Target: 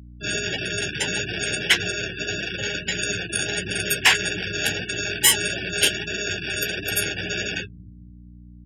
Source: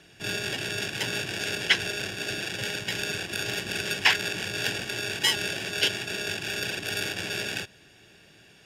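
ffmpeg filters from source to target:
-filter_complex "[0:a]afftfilt=real='re*gte(hypot(re,im),0.0316)':imag='im*gte(hypot(re,im),0.0316)':win_size=1024:overlap=0.75,asplit=2[a][b];[b]acontrast=89,volume=-0.5dB[c];[a][c]amix=inputs=2:normalize=0,flanger=delay=10:depth=3.6:regen=-23:speed=1.6:shape=triangular,aeval=exprs='val(0)+0.01*(sin(2*PI*60*n/s)+sin(2*PI*2*60*n/s)/2+sin(2*PI*3*60*n/s)/3+sin(2*PI*4*60*n/s)/4+sin(2*PI*5*60*n/s)/5)':c=same,acrossover=split=170[d][e];[d]aecho=1:1:228|456|684|912|1140|1368:0.501|0.231|0.106|0.0488|0.0224|0.0103[f];[e]aexciter=amount=7:drive=4.9:freq=7.2k[g];[f][g]amix=inputs=2:normalize=0,volume=-1.5dB"

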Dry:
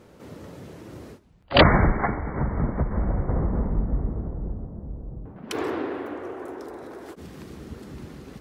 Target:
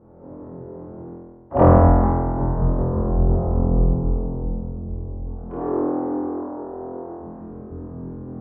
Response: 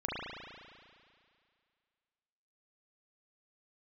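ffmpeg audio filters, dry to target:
-filter_complex "[0:a]lowpass=f=1k:w=0.5412,lowpass=f=1k:w=1.3066[a];[1:a]atrim=start_sample=2205,asetrate=66150,aresample=44100[b];[a][b]afir=irnorm=-1:irlink=0,volume=2.5dB"

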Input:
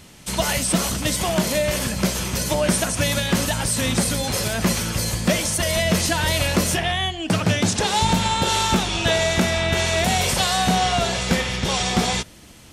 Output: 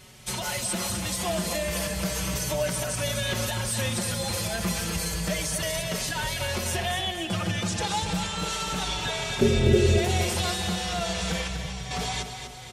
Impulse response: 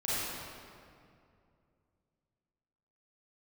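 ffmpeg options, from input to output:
-filter_complex "[0:a]equalizer=f=270:t=o:w=0.25:g=-12.5,alimiter=limit=-16.5dB:level=0:latency=1:release=155,asettb=1/sr,asplit=3[a][b][c];[a]atrim=end=9.414[d];[b]atrim=start=9.41:end=9.98,asetpts=PTS-STARTPTS,afade=t=in:d=0.004:c=qsin,afade=t=out:st=0.566:d=0.004:c=qsin,lowshelf=f=620:t=q:w=3:g=13.5[e];[c]atrim=start=9.976[f];[d][e]acrossfade=d=0.004:c1=hsin:c2=qsin[g];[g][f]acrossfade=d=0.004:c1=qsin:c2=hsin,asettb=1/sr,asplit=3[h][i][j];[h]atrim=end=11.474[k];[i]atrim=start=11.47:end=11.91,asetpts=PTS-STARTPTS,afade=t=in:d=0.004:c=qsin,afade=t=out:st=0.436:d=0.004:c=qsin,acrossover=split=180[l][m];[m]acompressor=threshold=-38dB:ratio=6[n];[l][n]amix=inputs=2:normalize=0[o];[j]atrim=start=11.906[p];[k][o]acrossfade=d=0.004:c1=hsin:c2=qsin[q];[q][p]acrossfade=d=0.004:c1=qsin:c2=hsin,aecho=1:1:246|492|738|984|1230|1476:0.398|0.211|0.112|0.0593|0.0314|0.0166,asplit=2[r][s];[s]adelay=4.9,afreqshift=-0.32[t];[r][t]amix=inputs=2:normalize=1"

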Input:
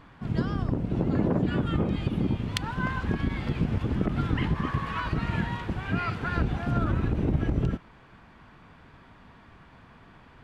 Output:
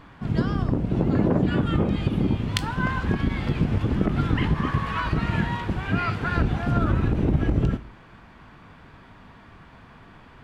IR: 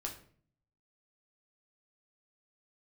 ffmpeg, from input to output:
-filter_complex "[0:a]asplit=2[a][b];[1:a]atrim=start_sample=2205,highshelf=f=6.6k:g=9.5,adelay=20[c];[b][c]afir=irnorm=-1:irlink=0,volume=-14.5dB[d];[a][d]amix=inputs=2:normalize=0,volume=4dB"

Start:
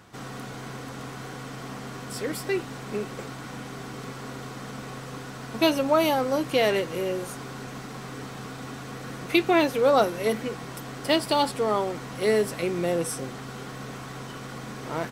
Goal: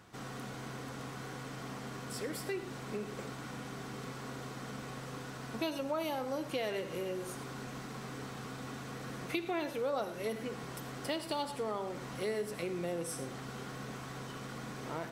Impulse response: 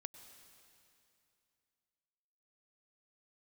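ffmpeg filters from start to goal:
-filter_complex "[1:a]atrim=start_sample=2205,afade=t=out:st=0.26:d=0.01,atrim=end_sample=11907,asetrate=74970,aresample=44100[a];[0:a][a]afir=irnorm=-1:irlink=0,acompressor=threshold=-40dB:ratio=2.5,volume=4dB"

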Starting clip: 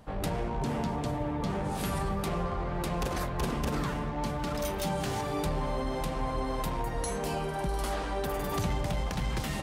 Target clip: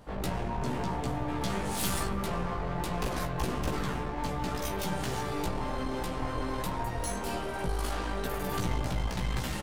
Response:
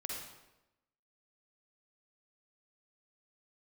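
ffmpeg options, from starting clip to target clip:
-filter_complex "[0:a]asettb=1/sr,asplit=3[a][b][c];[a]atrim=end=1.284[d];[b]atrim=start=1.28:end=2.07,asetpts=PTS-STARTPTS,afade=t=in:d=0.004:c=qsin,afade=t=out:st=0.786:d=0.004:c=qsin,highshelf=f=2.5k:g=10.5[e];[c]atrim=start=2.066[f];[d][e]acrossfade=d=0.004:c1=hsin:c2=qsin[g];[g][f]acrossfade=d=0.004:c1=qsin:c2=hsin,aeval=exprs='clip(val(0),-1,0.0141)':c=same,asplit=2[h][i];[i]adelay=16,volume=-3dB[j];[h][j]amix=inputs=2:normalize=0"

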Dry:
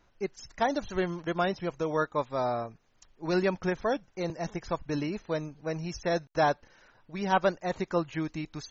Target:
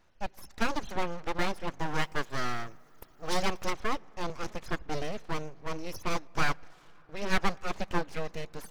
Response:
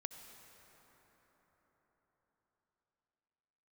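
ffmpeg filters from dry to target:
-filter_complex "[0:a]asettb=1/sr,asplit=3[a][b][c];[a]atrim=end=1.944[d];[b]atrim=start=1.94:end=3.73,asetpts=PTS-STARTPTS,afade=t=in:d=0.004:c=qsin,afade=t=out:st=1.786:d=0.004:c=qsin,aemphasis=mode=production:type=75fm[e];[c]atrim=start=3.726[f];[d][e]acrossfade=d=0.004:c1=hsin:c2=qsin[g];[g][f]acrossfade=d=0.004:c1=qsin:c2=hsin,aeval=exprs='abs(val(0))':c=same,asplit=2[h][i];[1:a]atrim=start_sample=2205,highshelf=f=3k:g=-10[j];[i][j]afir=irnorm=-1:irlink=0,volume=-13.5dB[k];[h][k]amix=inputs=2:normalize=0"

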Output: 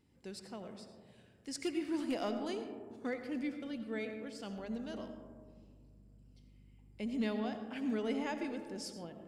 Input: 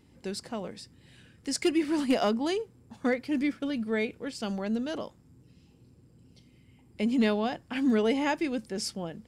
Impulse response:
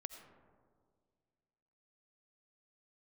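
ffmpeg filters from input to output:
-filter_complex "[1:a]atrim=start_sample=2205[a];[0:a][a]afir=irnorm=-1:irlink=0,asettb=1/sr,asplit=3[b][c][d];[b]atrim=end=4.584[e];[c]atrim=start=4.58:end=7.25,asetpts=PTS-STARTPTS,afade=t=in:d=0.004:c=qsin,afade=t=out:st=2.666:d=0.004:c=qsin,aeval=exprs='val(0)+0.00224*(sin(2*PI*50*n/s)+sin(2*PI*2*50*n/s)/2+sin(2*PI*3*50*n/s)/3+sin(2*PI*4*50*n/s)/4+sin(2*PI*5*50*n/s)/5)':c=same[f];[d]atrim=start=7.246[g];[e][f]acrossfade=d=0.004:c1=hsin:c2=qsin[h];[h][g]acrossfade=d=0.004:c1=qsin:c2=hsin,volume=-6.5dB"

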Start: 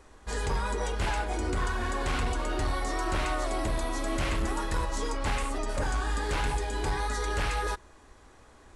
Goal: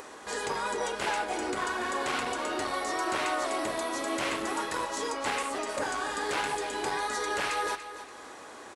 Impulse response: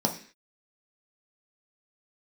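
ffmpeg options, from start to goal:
-filter_complex "[0:a]highpass=310,acompressor=mode=upward:threshold=-38dB:ratio=2.5,asplit=2[a][b];[b]aecho=0:1:288|576|864:0.251|0.0829|0.0274[c];[a][c]amix=inputs=2:normalize=0,volume=2dB"

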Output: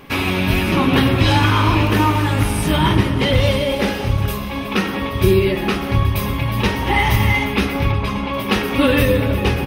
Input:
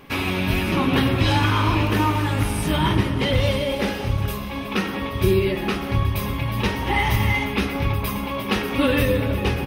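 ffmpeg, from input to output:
-filter_complex "[0:a]asplit=3[a][b][c];[a]afade=t=out:st=7.91:d=0.02[d];[b]lowpass=5.1k,afade=t=in:st=7.91:d=0.02,afade=t=out:st=8.32:d=0.02[e];[c]afade=t=in:st=8.32:d=0.02[f];[d][e][f]amix=inputs=3:normalize=0,volume=4.5dB"

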